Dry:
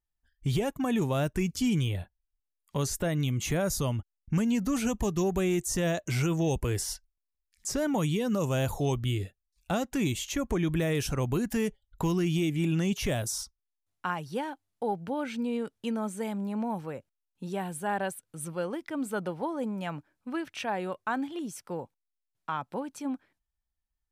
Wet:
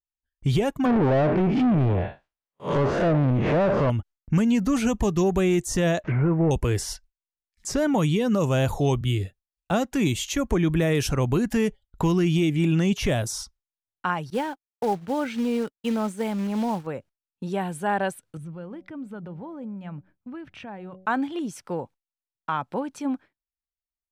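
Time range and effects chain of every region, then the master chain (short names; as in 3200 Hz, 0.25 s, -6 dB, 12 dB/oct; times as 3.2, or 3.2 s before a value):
0.85–3.9 time blur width 0.144 s + treble ducked by the level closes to 950 Hz, closed at -27.5 dBFS + overdrive pedal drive 30 dB, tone 1200 Hz, clips at -19 dBFS
6.04–6.51 delta modulation 32 kbps, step -44.5 dBFS + treble ducked by the level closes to 1200 Hz, closed at -26 dBFS + resonant high shelf 3100 Hz -13 dB, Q 1.5
9.01–11.09 high shelf 9000 Hz +5 dB + three-band expander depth 40%
14.3–16.87 expander -37 dBFS + high shelf 10000 Hz +5.5 dB + short-mantissa float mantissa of 2-bit
18.37–21.06 tone controls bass +13 dB, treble -10 dB + compressor 2:1, threshold -52 dBFS + de-hum 187.2 Hz, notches 4
whole clip: gate with hold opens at -50 dBFS; high shelf 8100 Hz -11 dB; gain +6 dB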